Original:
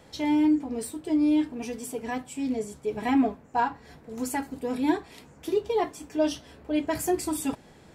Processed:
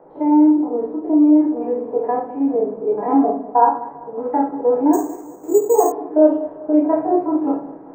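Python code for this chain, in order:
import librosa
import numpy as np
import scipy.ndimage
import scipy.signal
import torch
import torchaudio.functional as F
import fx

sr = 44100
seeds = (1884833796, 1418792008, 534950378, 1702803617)

p1 = fx.spec_steps(x, sr, hold_ms=50)
p2 = fx.rider(p1, sr, range_db=4, speed_s=0.5)
p3 = p1 + (p2 * librosa.db_to_amplitude(1.0))
p4 = scipy.signal.sosfilt(scipy.signal.butter(2, 420.0, 'highpass', fs=sr, output='sos'), p3)
p5 = p4 + fx.echo_feedback(p4, sr, ms=196, feedback_pct=43, wet_db=-17.5, dry=0)
p6 = fx.quant_dither(p5, sr, seeds[0], bits=10, dither='triangular')
p7 = scipy.signal.sosfilt(scipy.signal.butter(4, 1000.0, 'lowpass', fs=sr, output='sos'), p6)
p8 = fx.room_shoebox(p7, sr, seeds[1], volume_m3=43.0, walls='mixed', distance_m=0.57)
p9 = fx.resample_bad(p8, sr, factor=6, down='none', up='hold', at=(4.93, 5.92))
y = p9 * librosa.db_to_amplitude(5.5)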